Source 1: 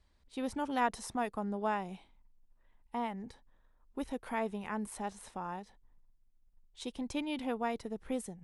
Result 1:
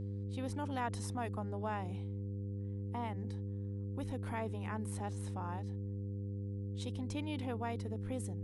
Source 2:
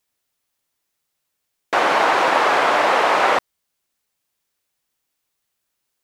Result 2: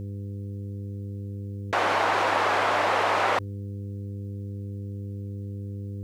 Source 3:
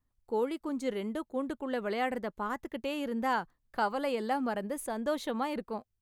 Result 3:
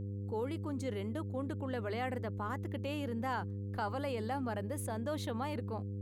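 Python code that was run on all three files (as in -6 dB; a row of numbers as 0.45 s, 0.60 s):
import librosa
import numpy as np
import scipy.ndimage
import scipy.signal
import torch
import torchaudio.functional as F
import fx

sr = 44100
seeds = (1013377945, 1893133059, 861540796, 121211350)

y = fx.hum_notches(x, sr, base_hz=50, count=4)
y = fx.dmg_buzz(y, sr, base_hz=100.0, harmonics=5, level_db=-38.0, tilt_db=-8, odd_only=False)
y = fx.env_flatten(y, sr, amount_pct=50)
y = y * librosa.db_to_amplitude(-8.0)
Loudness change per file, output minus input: -2.5 LU, -11.0 LU, -4.0 LU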